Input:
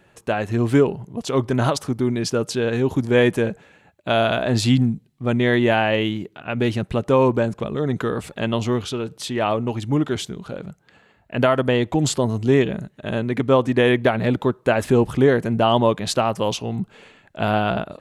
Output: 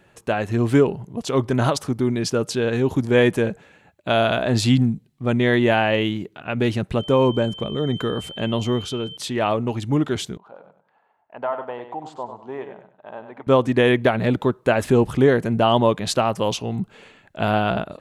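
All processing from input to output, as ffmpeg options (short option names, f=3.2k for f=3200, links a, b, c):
-filter_complex "[0:a]asettb=1/sr,asplit=3[a][b][c];[a]atrim=end=6.994[d];[b]atrim=start=6.99:end=9.17,asetpts=PTS-STARTPTS,afade=t=in:d=0.004:c=qsin,afade=t=out:st=2.176:d=0.004:c=qsin,equalizer=f=2.2k:w=0.39:g=-3.5,aeval=exprs='val(0)+0.0178*sin(2*PI*3100*n/s)':c=same[e];[c]atrim=start=9.166[f];[d][e]acrossfade=d=0.004:c1=hsin:c2=qsin[g];[g][f]acrossfade=d=0.004:c1=qsin:c2=hsin,asettb=1/sr,asplit=3[h][i][j];[h]atrim=end=10.374[k];[i]atrim=start=10.37:end=13.47,asetpts=PTS-STARTPTS,afade=t=in:d=0.004:c=qsin,afade=t=out:st=3.096:d=0.004:c=qsin,bandpass=f=870:t=q:w=3.4,aecho=1:1:97|194|291:0.355|0.0958|0.0259,atrim=end_sample=136710[l];[j]atrim=start=13.466[m];[k][l]acrossfade=d=0.004:c1=hsin:c2=qsin[n];[n][m]acrossfade=d=0.004:c1=qsin:c2=hsin"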